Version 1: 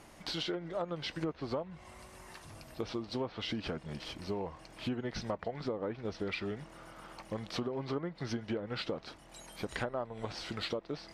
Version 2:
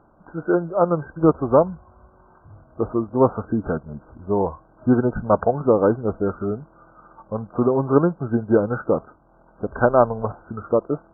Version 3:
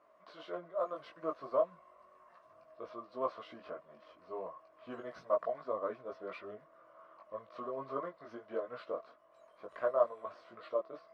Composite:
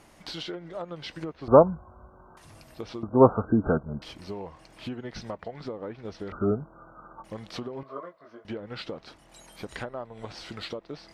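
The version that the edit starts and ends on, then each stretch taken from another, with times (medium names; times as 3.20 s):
1
1.48–2.37 s: from 2
3.03–4.02 s: from 2
6.32–7.24 s: from 2
7.83–8.45 s: from 3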